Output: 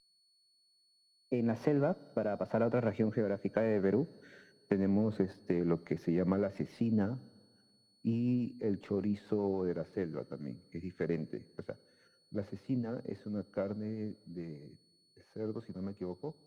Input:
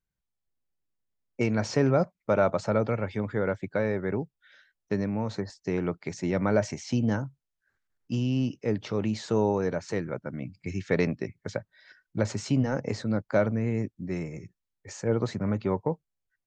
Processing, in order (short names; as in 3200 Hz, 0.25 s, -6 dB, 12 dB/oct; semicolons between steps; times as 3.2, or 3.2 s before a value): Doppler pass-by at 4.35, 19 m/s, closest 19 m; HPF 210 Hz 12 dB/oct; tilt -2.5 dB/oct; compressor 6:1, threshold -34 dBFS, peak gain reduction 13 dB; rotary speaker horn 1 Hz, later 7 Hz, at 4.89; whine 4400 Hz -68 dBFS; air absorption 210 m; on a send at -23 dB: reverb RT60 1.9 s, pre-delay 28 ms; on the sum: running maximum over 3 samples; gain +8.5 dB